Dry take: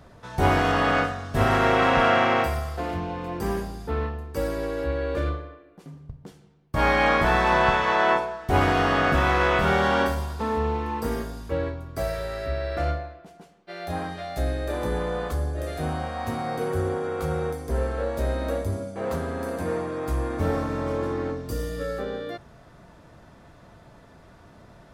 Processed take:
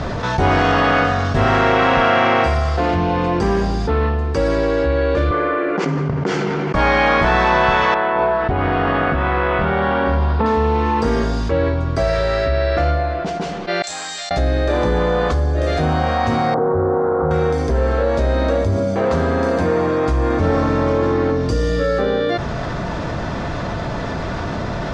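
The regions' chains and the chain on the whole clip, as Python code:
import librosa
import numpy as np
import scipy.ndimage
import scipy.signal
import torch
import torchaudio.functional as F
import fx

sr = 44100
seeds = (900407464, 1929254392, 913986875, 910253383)

y = fx.chain(x, sr, fx.cabinet(low_hz=220.0, low_slope=12, high_hz=7300.0, hz=(390.0, 940.0, 1400.0, 2100.0, 3800.0, 5500.0), db=(5, 3, 7, 6, -7, -3)),
    fx.env_flatten(amount_pct=70), at=(5.31, 6.75))
y = fx.chain(y, sr, fx.over_compress(threshold_db=-28.0, ratio=-1.0),
    fx.air_absorb(metres=340.0), at=(7.94, 10.46))
y = fx.chain(y, sr, fx.leveller(passes=1),
    fx.bandpass_q(hz=7500.0, q=9.5), at=(13.82, 14.31))
y = fx.chain(y, sr, fx.delta_mod(bps=32000, step_db=-27.5),
    fx.cheby2_lowpass(hz=2500.0, order=4, stop_db=40),
    fx.low_shelf(hz=170.0, db=-8.0), at=(16.54, 17.31))
y = scipy.signal.sosfilt(scipy.signal.butter(4, 6300.0, 'lowpass', fs=sr, output='sos'), y)
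y = fx.env_flatten(y, sr, amount_pct=70)
y = y * 10.0 ** (3.5 / 20.0)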